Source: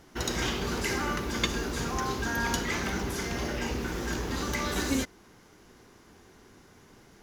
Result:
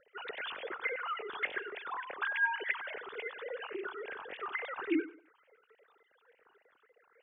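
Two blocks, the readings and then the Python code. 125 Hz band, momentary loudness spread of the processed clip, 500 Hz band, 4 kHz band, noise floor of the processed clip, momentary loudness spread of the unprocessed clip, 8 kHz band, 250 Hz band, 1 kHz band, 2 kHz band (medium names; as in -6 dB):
under -35 dB, 11 LU, -6.5 dB, -12.5 dB, -72 dBFS, 4 LU, under -40 dB, -9.0 dB, -6.0 dB, -1.5 dB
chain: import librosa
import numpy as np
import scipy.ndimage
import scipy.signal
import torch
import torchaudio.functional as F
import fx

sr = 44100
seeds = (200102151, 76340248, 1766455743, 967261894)

y = fx.sine_speech(x, sr)
y = fx.phaser_stages(y, sr, stages=6, low_hz=520.0, high_hz=1300.0, hz=3.5, feedback_pct=5)
y = fx.echo_feedback(y, sr, ms=96, feedback_pct=28, wet_db=-17.5)
y = F.gain(torch.from_numpy(y), -4.5).numpy()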